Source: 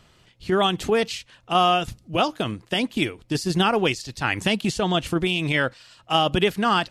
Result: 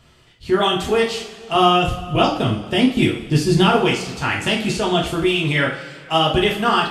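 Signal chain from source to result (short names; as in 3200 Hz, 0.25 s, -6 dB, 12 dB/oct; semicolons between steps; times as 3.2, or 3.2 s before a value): 1.55–3.75 low shelf 260 Hz +9 dB; two-slope reverb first 0.41 s, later 2.1 s, from -17 dB, DRR -3 dB; gain -1 dB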